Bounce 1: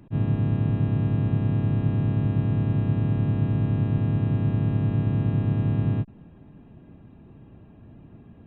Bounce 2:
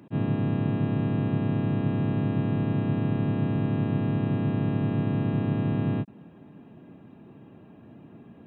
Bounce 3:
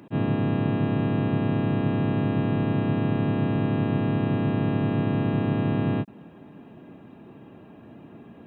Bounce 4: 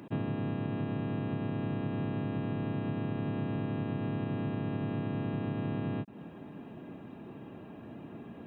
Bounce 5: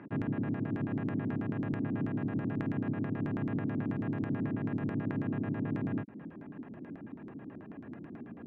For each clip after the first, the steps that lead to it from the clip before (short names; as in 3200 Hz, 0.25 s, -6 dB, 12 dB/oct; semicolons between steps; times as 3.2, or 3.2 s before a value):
HPF 180 Hz 12 dB/oct; gain +3 dB
bell 130 Hz -5 dB 2.2 oct; gain +5.5 dB
compressor 6:1, threshold -31 dBFS, peak gain reduction 11.5 dB
LFO low-pass square 9.2 Hz 290–1800 Hz; gain -2.5 dB